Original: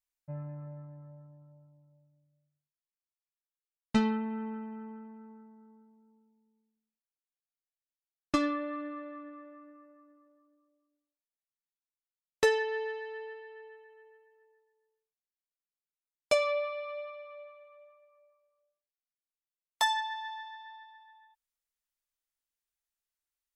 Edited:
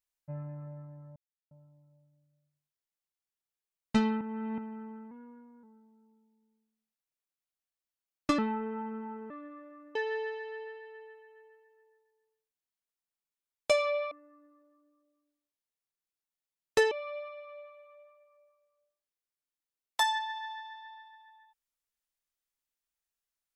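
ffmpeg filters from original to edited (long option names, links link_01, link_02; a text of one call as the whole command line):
ffmpeg -i in.wav -filter_complex "[0:a]asplit=12[link_01][link_02][link_03][link_04][link_05][link_06][link_07][link_08][link_09][link_10][link_11][link_12];[link_01]atrim=end=1.16,asetpts=PTS-STARTPTS,afade=type=out:start_time=1.156:duration=0.004:curve=hsin[link_13];[link_02]atrim=start=1.16:end=1.51,asetpts=PTS-STARTPTS,volume=0[link_14];[link_03]atrim=start=1.51:end=4.212,asetpts=PTS-STARTPTS,afade=type=in:duration=0.004:curve=hsin[link_15];[link_04]atrim=start=4.208:end=4.582,asetpts=PTS-STARTPTS,areverse[link_16];[link_05]atrim=start=4.578:end=5.114[link_17];[link_06]atrim=start=5.11:end=5.68,asetpts=PTS-STARTPTS,asetrate=48069,aresample=44100,atrim=end_sample=23061,asetpts=PTS-STARTPTS[link_18];[link_07]atrim=start=5.676:end=8.434[link_19];[link_08]atrim=start=8.43:end=9.12,asetpts=PTS-STARTPTS,asetrate=33075,aresample=44100[link_20];[link_09]atrim=start=9.116:end=9.772[link_21];[link_10]atrim=start=12.568:end=16.732[link_22];[link_11]atrim=start=9.768:end=12.572[link_23];[link_12]atrim=start=16.728[link_24];[link_13][link_14][link_15]concat=n=3:v=0:a=1[link_25];[link_25][link_16]acrossfade=duration=0.004:curve1=hsin:curve2=hsin[link_26];[link_26][link_17]acrossfade=duration=0.004:curve1=hsin:curve2=hsin[link_27];[link_27][link_18]acrossfade=duration=0.004:curve1=hsin:curve2=hsin[link_28];[link_28][link_19]acrossfade=duration=0.004:curve1=hsin:curve2=hsin[link_29];[link_29][link_20]acrossfade=duration=0.004:curve1=hsin:curve2=hsin[link_30];[link_30][link_21]acrossfade=duration=0.004:curve1=hsin:curve2=hsin[link_31];[link_31][link_22]acrossfade=duration=0.004:curve1=hsin:curve2=hsin[link_32];[link_32][link_23]acrossfade=duration=0.004:curve1=hsin:curve2=hsin[link_33];[link_33][link_24]acrossfade=duration=0.004:curve1=hsin:curve2=hsin" out.wav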